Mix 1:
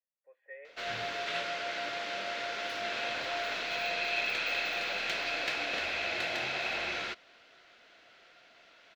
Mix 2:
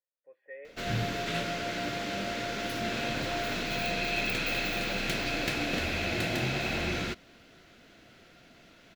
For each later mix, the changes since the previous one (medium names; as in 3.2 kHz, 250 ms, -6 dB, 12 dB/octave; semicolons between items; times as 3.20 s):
master: remove three-band isolator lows -20 dB, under 490 Hz, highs -16 dB, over 5.9 kHz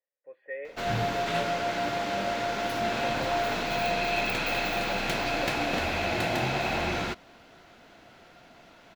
speech +8.0 dB; background: add peaking EQ 880 Hz +11 dB 1 oct